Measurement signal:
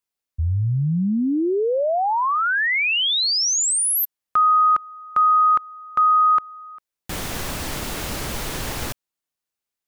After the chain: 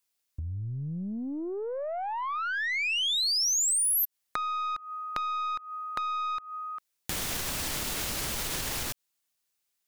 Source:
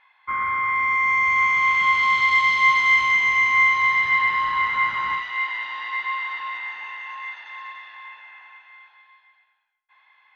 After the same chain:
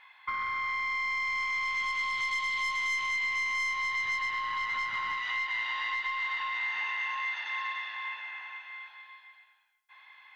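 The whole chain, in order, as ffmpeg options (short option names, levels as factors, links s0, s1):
-af "aeval=exprs='(tanh(5.01*val(0)+0.25)-tanh(0.25))/5.01':c=same,acompressor=threshold=0.0251:ratio=10:attack=4.5:release=265:knee=1:detection=peak,highshelf=f=2000:g=8.5"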